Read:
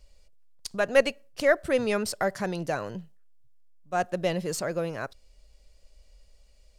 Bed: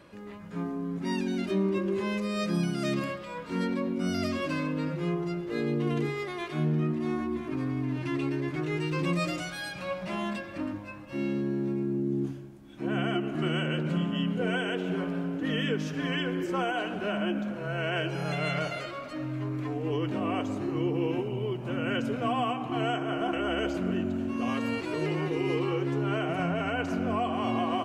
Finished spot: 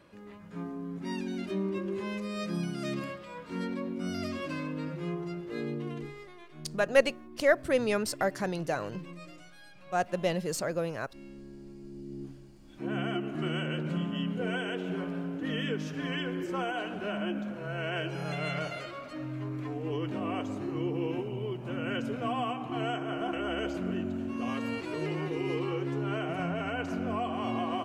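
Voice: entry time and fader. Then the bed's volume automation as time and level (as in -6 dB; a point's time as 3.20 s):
6.00 s, -2.0 dB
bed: 5.63 s -5 dB
6.52 s -18 dB
11.76 s -18 dB
12.76 s -3.5 dB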